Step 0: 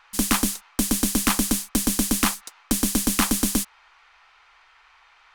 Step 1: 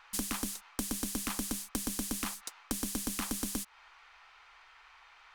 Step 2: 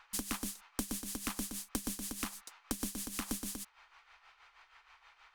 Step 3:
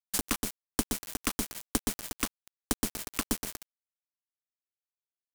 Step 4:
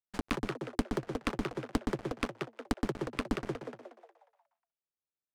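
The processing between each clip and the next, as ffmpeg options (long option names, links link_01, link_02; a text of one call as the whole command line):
ffmpeg -i in.wav -af "alimiter=limit=-13dB:level=0:latency=1:release=240,acompressor=threshold=-29dB:ratio=6,volume=-2.5dB" out.wav
ffmpeg -i in.wav -af "tremolo=f=6.3:d=0.66,volume=-1dB" out.wav
ffmpeg -i in.wav -af "aeval=exprs='val(0)*gte(abs(val(0)),0.02)':channel_layout=same,volume=8.5dB" out.wav
ffmpeg -i in.wav -filter_complex "[0:a]asplit=7[link_01][link_02][link_03][link_04][link_05][link_06][link_07];[link_02]adelay=180,afreqshift=110,volume=-3.5dB[link_08];[link_03]adelay=360,afreqshift=220,volume=-10.2dB[link_09];[link_04]adelay=540,afreqshift=330,volume=-17dB[link_10];[link_05]adelay=720,afreqshift=440,volume=-23.7dB[link_11];[link_06]adelay=900,afreqshift=550,volume=-30.5dB[link_12];[link_07]adelay=1080,afreqshift=660,volume=-37.2dB[link_13];[link_01][link_08][link_09][link_10][link_11][link_12][link_13]amix=inputs=7:normalize=0,adynamicsmooth=sensitivity=1.5:basefreq=1300" out.wav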